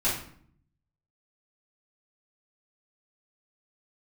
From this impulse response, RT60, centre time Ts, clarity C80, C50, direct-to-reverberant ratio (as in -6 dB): 0.60 s, 40 ms, 8.5 dB, 4.0 dB, -10.0 dB